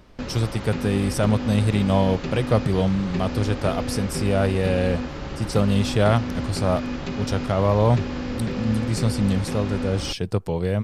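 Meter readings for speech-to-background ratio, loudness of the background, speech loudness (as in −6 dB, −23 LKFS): 6.5 dB, −30.0 LKFS, −23.5 LKFS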